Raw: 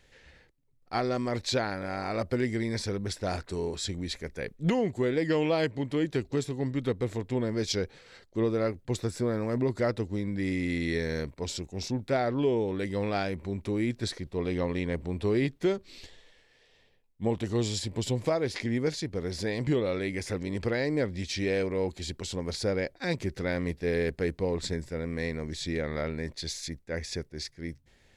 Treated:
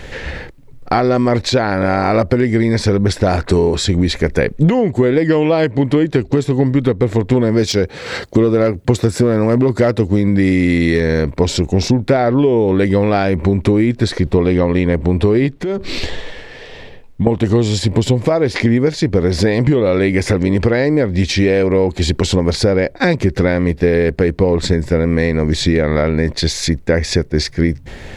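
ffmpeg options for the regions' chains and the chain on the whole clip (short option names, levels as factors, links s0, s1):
-filter_complex "[0:a]asettb=1/sr,asplit=3[s0][s1][s2];[s0]atrim=end=7.314[s3];[s1]atrim=start=7.31:end=11,asetpts=PTS-STARTPTS,afade=t=in:d=0.004:c=qsin,afade=t=out:st=3.686:d=0.004:c=qsin,highshelf=f=5500:g=6,asoftclip=type=hard:threshold=0.0891,highpass=57[s4];[s2]atrim=start=10.996[s5];[s3][s4]acrossfade=d=0.004:c1=hsin:c2=qsin[s6];[s6][s5]acrossfade=d=0.004:c1=qsin:c2=hsin,asettb=1/sr,asplit=3[s7][s8][s9];[s7]atrim=end=15.544[s10];[s8]atrim=start=15.54:end=17.27,asetpts=PTS-STARTPTS,afade=t=in:d=0.004:c=qsin,afade=t=out:st=1.726:d=0.004:c=qsin,highshelf=f=9500:g=-5.5,acompressor=threshold=0.00708:ratio=10:attack=3.2:release=140:knee=1:detection=peak[s11];[s9]atrim=start=17.266[s12];[s10][s11]acrossfade=d=0.004:c1=hsin:c2=qsin[s13];[s13][s12]acrossfade=d=0.004:c1=qsin:c2=hsin,acompressor=threshold=0.00891:ratio=16,highshelf=f=3100:g=-10.5,alimiter=level_in=42.2:limit=0.891:release=50:level=0:latency=1,volume=0.891"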